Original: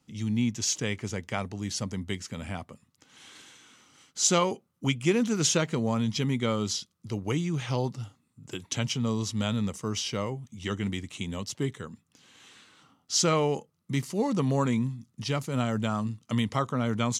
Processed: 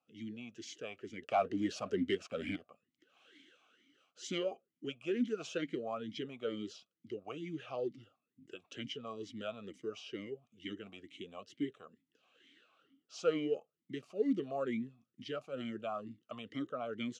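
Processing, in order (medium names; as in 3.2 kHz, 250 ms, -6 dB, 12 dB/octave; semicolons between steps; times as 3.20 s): 1.22–2.56 s: waveshaping leveller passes 3; talking filter a-i 2.2 Hz; trim +1 dB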